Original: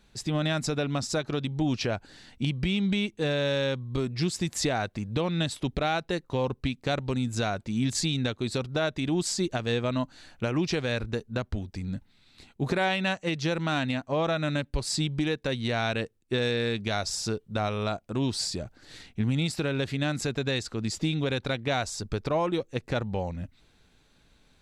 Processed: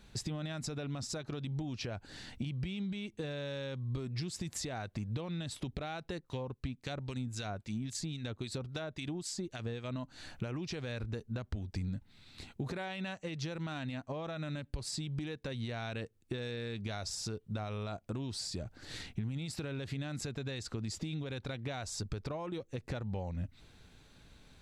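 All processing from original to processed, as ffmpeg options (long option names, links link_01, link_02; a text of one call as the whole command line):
ffmpeg -i in.wav -filter_complex "[0:a]asettb=1/sr,asplit=3[link_01][link_02][link_03];[link_01]atrim=end=6.184[link_04];[link_02]atrim=start=6.18:end=9.96,asetpts=PTS-STARTPTS,afade=type=in:duration=0.004:curve=qsin,afade=type=out:start_time=3.776:duration=0.004:curve=qsin,acompressor=mode=upward:threshold=-50dB:ratio=2.5:attack=3.2:release=140:knee=2.83:detection=peak,acrossover=split=1600[link_05][link_06];[link_05]aeval=exprs='val(0)*(1-0.7/2+0.7/2*cos(2*PI*3.7*n/s))':channel_layout=same[link_07];[link_06]aeval=exprs='val(0)*(1-0.7/2-0.7/2*cos(2*PI*3.7*n/s))':channel_layout=same[link_08];[link_07][link_08]amix=inputs=2:normalize=0[link_09];[link_03]atrim=start=9.956[link_10];[link_04][link_09]acrossfade=duration=0.004:curve1=hsin:curve2=qsin[link_11];[link_11][link_10]acrossfade=duration=0.004:curve1=qsin:curve2=hsin,alimiter=limit=-21dB:level=0:latency=1:release=32,acompressor=threshold=-39dB:ratio=10,equalizer=frequency=94:width=0.91:gain=5,volume=2dB" out.wav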